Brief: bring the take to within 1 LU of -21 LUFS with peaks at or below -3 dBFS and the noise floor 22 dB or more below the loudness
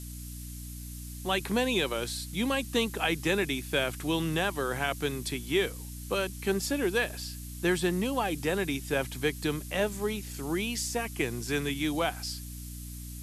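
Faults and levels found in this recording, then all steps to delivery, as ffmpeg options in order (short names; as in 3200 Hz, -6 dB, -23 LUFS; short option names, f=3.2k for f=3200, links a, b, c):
hum 60 Hz; harmonics up to 300 Hz; hum level -39 dBFS; noise floor -41 dBFS; noise floor target -53 dBFS; loudness -30.5 LUFS; peak -13.0 dBFS; loudness target -21.0 LUFS
-> -af "bandreject=f=60:t=h:w=4,bandreject=f=120:t=h:w=4,bandreject=f=180:t=h:w=4,bandreject=f=240:t=h:w=4,bandreject=f=300:t=h:w=4"
-af "afftdn=nr=12:nf=-41"
-af "volume=9.5dB"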